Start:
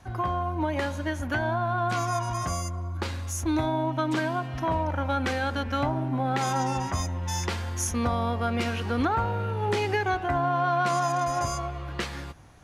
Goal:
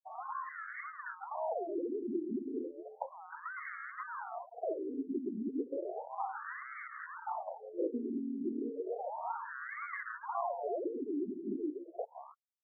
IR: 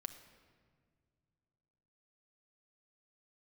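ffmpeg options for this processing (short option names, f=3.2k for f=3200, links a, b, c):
-filter_complex "[0:a]afftfilt=real='re*gte(hypot(re,im),0.0501)':imag='im*gte(hypot(re,im),0.0501)':win_size=1024:overlap=0.75,acrossover=split=130|2100[a][b][c];[a]aeval=exprs='0.0119*(abs(mod(val(0)/0.0119+3,4)-2)-1)':c=same[d];[b]acompressor=threshold=-34dB:ratio=16[e];[d][e][c]amix=inputs=3:normalize=0,acrusher=samples=34:mix=1:aa=0.000001:lfo=1:lforange=20.4:lforate=1.9,areverse,acompressor=mode=upward:threshold=-48dB:ratio=2.5,areverse,afftfilt=real='re*between(b*sr/1024,280*pow(1600/280,0.5+0.5*sin(2*PI*0.33*pts/sr))/1.41,280*pow(1600/280,0.5+0.5*sin(2*PI*0.33*pts/sr))*1.41)':imag='im*between(b*sr/1024,280*pow(1600/280,0.5+0.5*sin(2*PI*0.33*pts/sr))/1.41,280*pow(1600/280,0.5+0.5*sin(2*PI*0.33*pts/sr))*1.41)':win_size=1024:overlap=0.75,volume=5dB"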